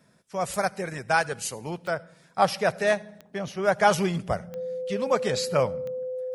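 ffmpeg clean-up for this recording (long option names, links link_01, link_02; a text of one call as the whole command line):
ffmpeg -i in.wav -af "adeclick=threshold=4,bandreject=frequency=510:width=30" out.wav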